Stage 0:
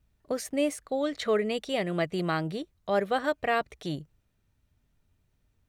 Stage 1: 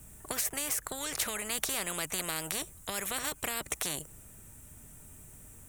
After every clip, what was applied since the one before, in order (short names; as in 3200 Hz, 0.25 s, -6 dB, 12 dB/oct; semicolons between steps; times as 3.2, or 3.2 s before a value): resonant high shelf 6200 Hz +12 dB, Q 3; compressor, threshold -27 dBFS, peak gain reduction 8 dB; spectral compressor 4:1; gain +4 dB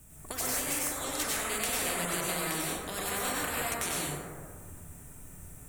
plate-style reverb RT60 1.8 s, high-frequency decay 0.3×, pre-delay 85 ms, DRR -7 dB; gain -3.5 dB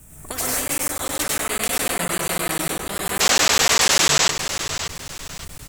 painted sound noise, 3.2–4.31, 370–8000 Hz -26 dBFS; feedback echo 0.571 s, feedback 33%, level -9.5 dB; crackling interface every 0.10 s, samples 512, zero, from 0.68; gain +8.5 dB